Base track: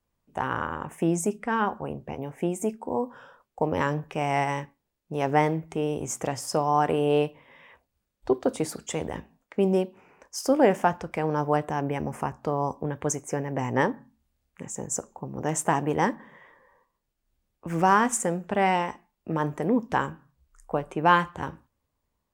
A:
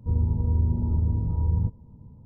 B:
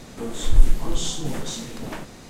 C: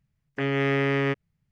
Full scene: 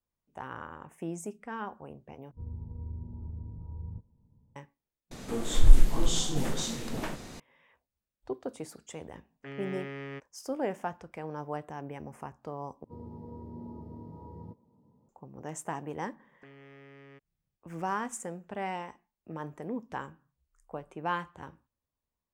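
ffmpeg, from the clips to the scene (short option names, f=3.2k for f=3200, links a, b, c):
-filter_complex "[1:a]asplit=2[a][b];[3:a]asplit=2[c][d];[0:a]volume=-12.5dB[e];[b]highpass=300[f];[d]acompressor=threshold=-36dB:ratio=6:attack=3.2:release=140:knee=1:detection=peak[g];[e]asplit=4[h][i][j][k];[h]atrim=end=2.314[l];[a]atrim=end=2.25,asetpts=PTS-STARTPTS,volume=-17dB[m];[i]atrim=start=4.556:end=5.114[n];[2:a]atrim=end=2.29,asetpts=PTS-STARTPTS,volume=-2dB[o];[j]atrim=start=7.396:end=12.844[p];[f]atrim=end=2.25,asetpts=PTS-STARTPTS,volume=-5dB[q];[k]atrim=start=15.086[r];[c]atrim=end=1.51,asetpts=PTS-STARTPTS,volume=-16.5dB,afade=t=in:d=0.004:c=hsin,afade=t=out:st=1.506:d=0.004:c=hsin,adelay=399546S[s];[g]atrim=end=1.51,asetpts=PTS-STARTPTS,volume=-14dB,afade=t=in:d=0.004:c=hsin,afade=t=out:st=1.506:d=0.004:c=hsin,adelay=16050[t];[l][m]acrossfade=d=0.004:c1=hsin:c2=hsin[u];[u][n]acrossfade=d=0.004:c1=hsin:c2=hsin[v];[v][o]acrossfade=d=0.004:c1=hsin:c2=hsin[w];[w][p]acrossfade=d=0.004:c1=hsin:c2=hsin[x];[x][q]acrossfade=d=0.004:c1=hsin:c2=hsin[y];[y][r]acrossfade=d=0.004:c1=hsin:c2=hsin[z];[z][s][t]amix=inputs=3:normalize=0"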